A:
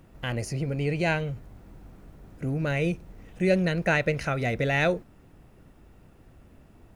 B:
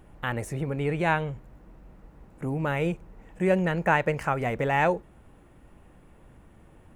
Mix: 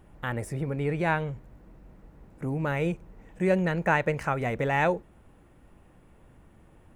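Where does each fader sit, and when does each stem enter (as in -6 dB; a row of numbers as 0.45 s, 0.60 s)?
-15.0 dB, -2.5 dB; 0.00 s, 0.00 s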